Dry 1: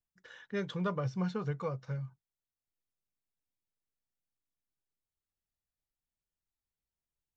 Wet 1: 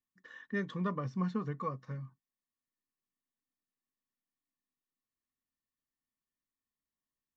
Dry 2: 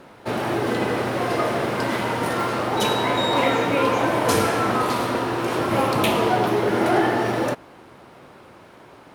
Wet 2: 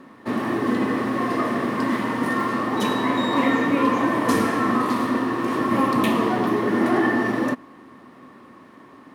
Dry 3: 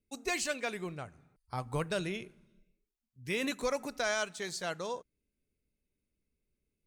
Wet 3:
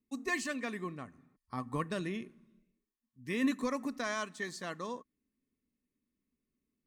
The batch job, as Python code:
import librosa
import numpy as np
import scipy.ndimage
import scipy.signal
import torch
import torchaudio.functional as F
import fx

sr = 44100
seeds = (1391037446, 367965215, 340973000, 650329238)

y = fx.low_shelf(x, sr, hz=72.0, db=-5.0)
y = fx.small_body(y, sr, hz=(250.0, 1100.0, 1800.0), ring_ms=35, db=15)
y = y * librosa.db_to_amplitude(-6.5)